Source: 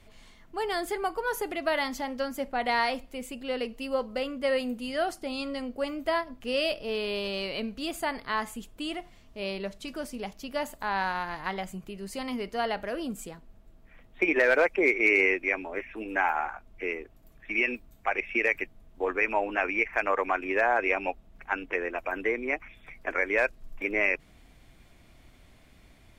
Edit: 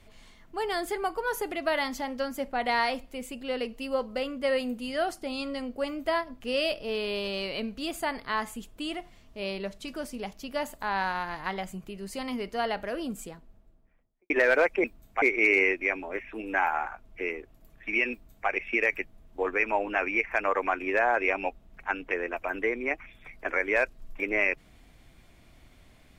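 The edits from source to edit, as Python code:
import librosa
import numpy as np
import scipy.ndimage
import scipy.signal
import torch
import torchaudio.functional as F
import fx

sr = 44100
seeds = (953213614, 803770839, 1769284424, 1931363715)

y = fx.studio_fade_out(x, sr, start_s=13.16, length_s=1.14)
y = fx.edit(y, sr, fx.duplicate(start_s=17.73, length_s=0.38, to_s=14.84), tone=tone)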